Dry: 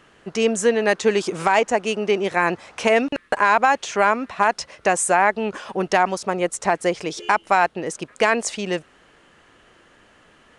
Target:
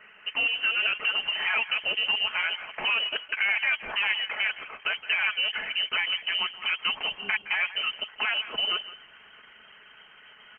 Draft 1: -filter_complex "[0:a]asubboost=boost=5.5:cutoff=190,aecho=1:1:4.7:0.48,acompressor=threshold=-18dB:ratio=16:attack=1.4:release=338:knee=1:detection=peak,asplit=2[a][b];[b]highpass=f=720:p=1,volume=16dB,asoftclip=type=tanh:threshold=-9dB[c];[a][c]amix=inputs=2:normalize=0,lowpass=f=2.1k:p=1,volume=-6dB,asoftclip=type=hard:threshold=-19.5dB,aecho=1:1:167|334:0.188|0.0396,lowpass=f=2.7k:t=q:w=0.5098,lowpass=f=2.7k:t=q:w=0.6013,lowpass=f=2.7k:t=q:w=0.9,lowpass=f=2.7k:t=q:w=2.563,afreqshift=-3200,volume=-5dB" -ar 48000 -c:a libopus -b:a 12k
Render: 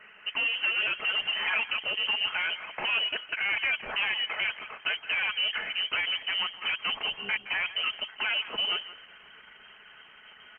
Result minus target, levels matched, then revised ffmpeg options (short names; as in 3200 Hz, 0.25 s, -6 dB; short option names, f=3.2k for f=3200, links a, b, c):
hard clip: distortion +34 dB
-filter_complex "[0:a]asubboost=boost=5.5:cutoff=190,aecho=1:1:4.7:0.48,acompressor=threshold=-18dB:ratio=16:attack=1.4:release=338:knee=1:detection=peak,asplit=2[a][b];[b]highpass=f=720:p=1,volume=16dB,asoftclip=type=tanh:threshold=-9dB[c];[a][c]amix=inputs=2:normalize=0,lowpass=f=2.1k:p=1,volume=-6dB,asoftclip=type=hard:threshold=-12dB,aecho=1:1:167|334:0.188|0.0396,lowpass=f=2.7k:t=q:w=0.5098,lowpass=f=2.7k:t=q:w=0.6013,lowpass=f=2.7k:t=q:w=0.9,lowpass=f=2.7k:t=q:w=2.563,afreqshift=-3200,volume=-5dB" -ar 48000 -c:a libopus -b:a 12k